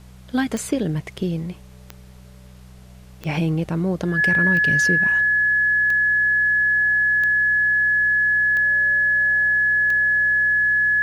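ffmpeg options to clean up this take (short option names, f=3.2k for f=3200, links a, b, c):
-af "adeclick=t=4,bandreject=f=62.7:t=h:w=4,bandreject=f=125.4:t=h:w=4,bandreject=f=188.1:t=h:w=4,bandreject=f=1.7k:w=30,agate=range=-21dB:threshold=-35dB"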